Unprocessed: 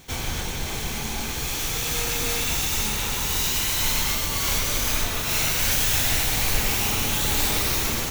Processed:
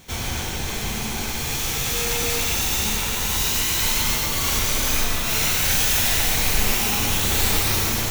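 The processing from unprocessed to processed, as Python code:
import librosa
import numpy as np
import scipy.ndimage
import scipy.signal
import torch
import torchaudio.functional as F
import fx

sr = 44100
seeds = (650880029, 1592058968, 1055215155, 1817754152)

y = fx.rev_gated(x, sr, seeds[0], gate_ms=180, shape='flat', drr_db=1.5)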